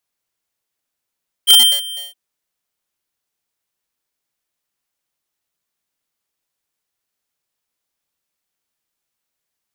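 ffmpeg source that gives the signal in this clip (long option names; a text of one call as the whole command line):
ffmpeg -f lavfi -i "aevalsrc='0.473*(2*lt(mod(3150*t,1),0.5)-1)':duration=0.668:sample_rate=44100,afade=type=in:duration=0.037,afade=type=out:start_time=0.037:duration=0.311:silence=0.0891,afade=type=out:start_time=0.52:duration=0.148" out.wav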